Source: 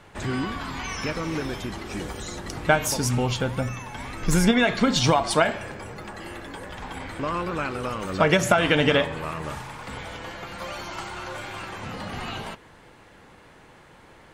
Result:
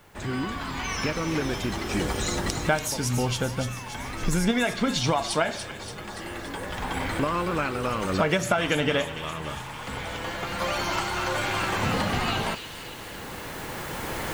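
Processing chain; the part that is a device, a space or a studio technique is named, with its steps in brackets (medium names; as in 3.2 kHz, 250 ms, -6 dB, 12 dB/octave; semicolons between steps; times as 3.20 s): cheap recorder with automatic gain (white noise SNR 34 dB; recorder AGC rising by 6.8 dB/s); feedback echo behind a high-pass 287 ms, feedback 62%, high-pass 2.8 kHz, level -7 dB; trim -4.5 dB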